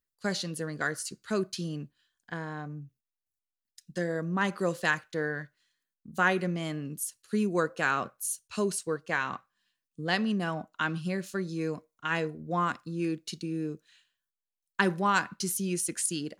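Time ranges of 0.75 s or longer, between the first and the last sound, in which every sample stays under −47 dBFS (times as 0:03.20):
0:02.87–0:03.78
0:13.77–0:14.79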